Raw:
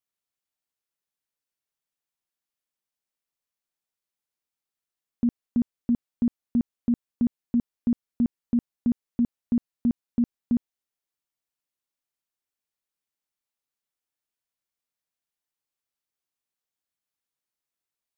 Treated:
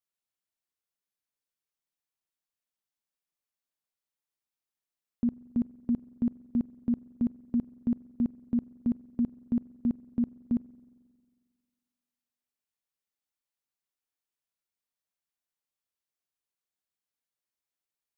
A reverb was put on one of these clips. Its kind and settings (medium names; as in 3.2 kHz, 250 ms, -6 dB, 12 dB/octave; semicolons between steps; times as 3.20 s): spring tank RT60 1.8 s, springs 45 ms, chirp 80 ms, DRR 19 dB; trim -4 dB